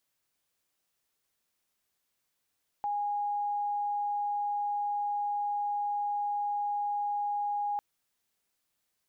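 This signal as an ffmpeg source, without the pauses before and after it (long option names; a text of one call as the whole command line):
ffmpeg -f lavfi -i "sine=frequency=822:duration=4.95:sample_rate=44100,volume=-10.44dB" out.wav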